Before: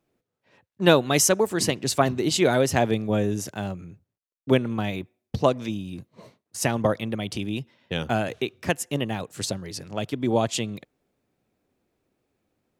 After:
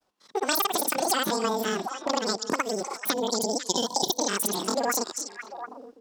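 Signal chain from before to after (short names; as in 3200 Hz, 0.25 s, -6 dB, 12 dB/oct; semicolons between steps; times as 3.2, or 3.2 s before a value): spectral gain 6.72–9.04, 480–1400 Hz -27 dB; grains, pitch spread up and down by 0 st; on a send: delay with a stepping band-pass 0.527 s, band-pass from 3000 Hz, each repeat -1.4 oct, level -11 dB; on the sum: compressor 5:1, threshold -32 dBFS, peak gain reduction 15.5 dB; bell 2500 Hz +6.5 dB 1.5 oct; AGC gain up to 8 dB; wide varispeed 2.13×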